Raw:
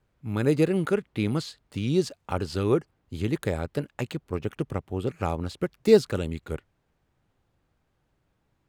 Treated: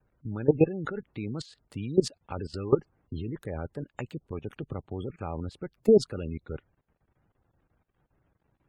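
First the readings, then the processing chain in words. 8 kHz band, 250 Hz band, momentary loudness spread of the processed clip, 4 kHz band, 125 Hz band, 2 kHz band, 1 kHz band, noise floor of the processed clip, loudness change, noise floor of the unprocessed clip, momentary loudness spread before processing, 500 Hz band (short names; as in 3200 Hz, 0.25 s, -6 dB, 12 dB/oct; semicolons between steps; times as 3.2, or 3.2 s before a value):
-3.5 dB, -3.5 dB, 16 LU, -6.0 dB, -4.5 dB, -8.5 dB, -6.0 dB, -77 dBFS, -3.0 dB, -73 dBFS, 12 LU, -2.0 dB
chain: added harmonics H 3 -43 dB, 5 -25 dB, 7 -34 dB, 8 -32 dB, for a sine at -4.5 dBFS; level quantiser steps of 18 dB; spectral gate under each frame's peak -25 dB strong; gain +2.5 dB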